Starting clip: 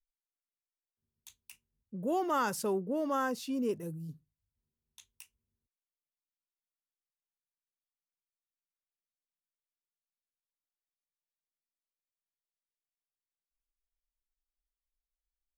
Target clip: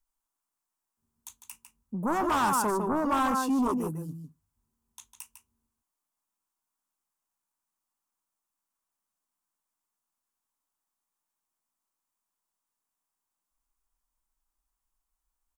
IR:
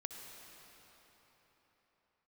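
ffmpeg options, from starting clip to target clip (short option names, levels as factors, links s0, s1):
-filter_complex "[0:a]asplit=2[s0][s1];[s1]adelay=151.6,volume=0.447,highshelf=f=4000:g=-3.41[s2];[s0][s2]amix=inputs=2:normalize=0,aeval=exprs='0.112*sin(PI/2*3.16*val(0)/0.112)':c=same,equalizer=f=125:t=o:w=1:g=-6,equalizer=f=250:t=o:w=1:g=5,equalizer=f=500:t=o:w=1:g=-7,equalizer=f=1000:t=o:w=1:g=11,equalizer=f=2000:t=o:w=1:g=-6,equalizer=f=4000:t=o:w=1:g=-7,equalizer=f=8000:t=o:w=1:g=4,volume=0.501"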